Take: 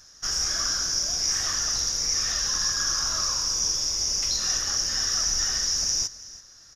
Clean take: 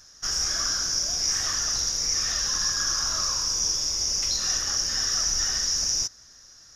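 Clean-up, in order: inverse comb 333 ms -18 dB

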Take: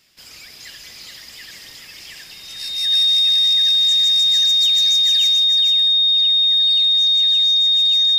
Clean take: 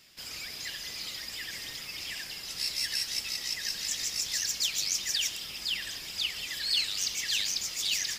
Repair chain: band-stop 3.7 kHz, Q 30; inverse comb 431 ms -6 dB; trim 0 dB, from 5.44 s +9 dB

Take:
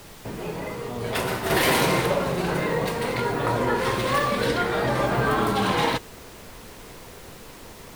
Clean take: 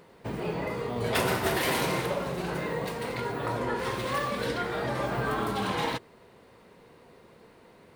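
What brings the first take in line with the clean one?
noise print and reduce 12 dB; trim 0 dB, from 1.50 s -7 dB

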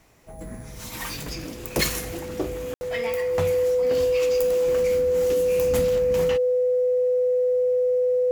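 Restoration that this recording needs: band-stop 500 Hz, Q 30; room tone fill 2.74–2.81 s

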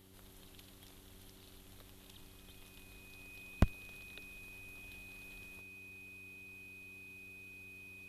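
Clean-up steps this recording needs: clip repair -18 dBFS; de-hum 95.1 Hz, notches 4; band-stop 2.5 kHz, Q 30

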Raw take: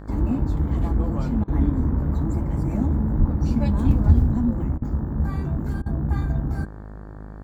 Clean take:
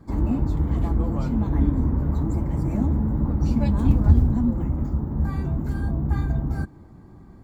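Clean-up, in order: de-hum 51.9 Hz, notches 35; 3.18–3.30 s: high-pass 140 Hz 24 dB/octave; interpolate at 1.44/4.78/5.82 s, 39 ms

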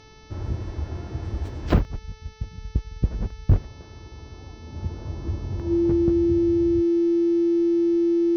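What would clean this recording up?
clip repair -9 dBFS; de-hum 436.9 Hz, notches 14; band-stop 340 Hz, Q 30

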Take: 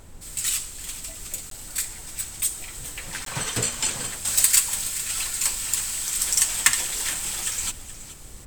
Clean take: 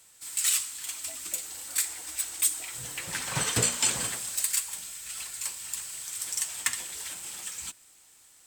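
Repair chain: interpolate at 1.50/3.25 s, 13 ms; noise print and reduce 17 dB; inverse comb 423 ms -15 dB; gain correction -10 dB, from 4.25 s

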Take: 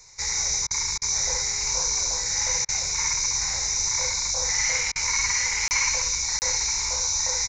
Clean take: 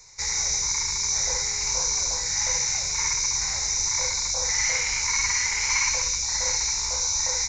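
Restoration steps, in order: interpolate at 5.68/6.39 s, 29 ms; interpolate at 0.67/0.98/2.65/4.92 s, 36 ms; inverse comb 1041 ms -14 dB

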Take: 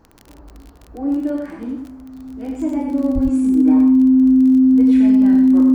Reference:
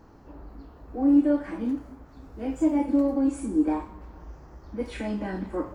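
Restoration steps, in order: de-click; band-stop 260 Hz, Q 30; 3.14–3.26 s: high-pass 140 Hz 24 dB/octave; inverse comb 93 ms -5 dB

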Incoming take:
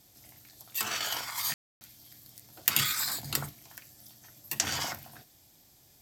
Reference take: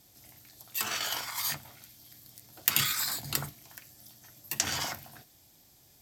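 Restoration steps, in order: room tone fill 1.54–1.81 s

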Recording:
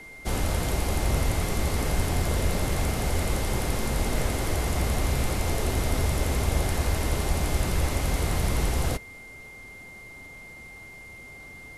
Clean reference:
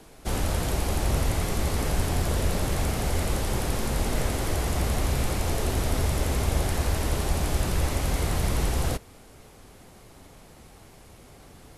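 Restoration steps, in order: band-stop 2.1 kHz, Q 30

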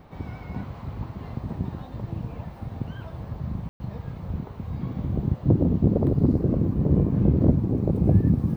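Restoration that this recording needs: room tone fill 3.69–3.80 s

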